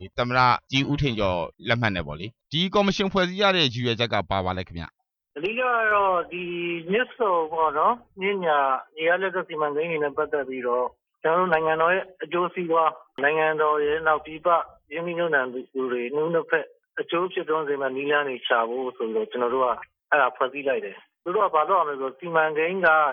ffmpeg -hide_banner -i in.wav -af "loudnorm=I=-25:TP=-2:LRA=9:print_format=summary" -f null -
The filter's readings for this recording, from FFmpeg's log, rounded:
Input Integrated:    -23.8 LUFS
Input True Peak:      -6.0 dBTP
Input LRA:             2.6 LU
Input Threshold:     -34.0 LUFS